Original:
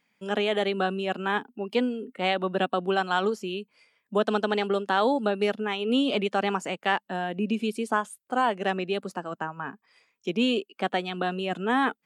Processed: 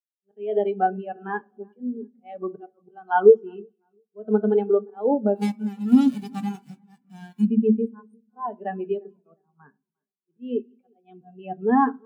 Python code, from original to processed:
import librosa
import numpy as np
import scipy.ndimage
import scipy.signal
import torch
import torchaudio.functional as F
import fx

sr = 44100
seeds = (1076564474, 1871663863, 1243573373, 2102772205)

y = fx.envelope_flatten(x, sr, power=0.1, at=(5.34, 7.44), fade=0.02)
y = fx.auto_swell(y, sr, attack_ms=230.0)
y = fx.echo_split(y, sr, split_hz=2500.0, low_ms=351, high_ms=194, feedback_pct=52, wet_db=-15.0)
y = fx.rev_fdn(y, sr, rt60_s=0.86, lf_ratio=1.35, hf_ratio=0.55, size_ms=40.0, drr_db=7.0)
y = fx.spectral_expand(y, sr, expansion=2.5)
y = y * librosa.db_to_amplitude(5.0)